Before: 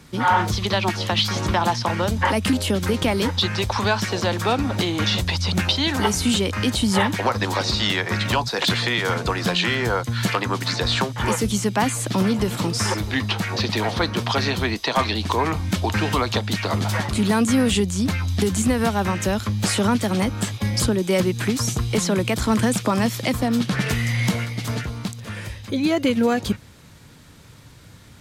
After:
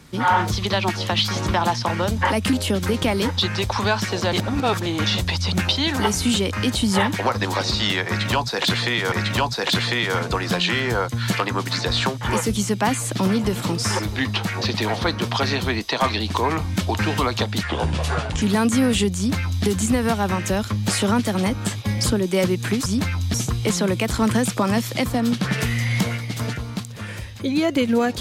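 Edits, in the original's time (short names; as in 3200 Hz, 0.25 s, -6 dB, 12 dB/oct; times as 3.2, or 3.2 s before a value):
4.33–4.86 reverse
8.07–9.12 loop, 2 plays
16.58–17.18 speed 76%
17.93–18.41 copy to 21.62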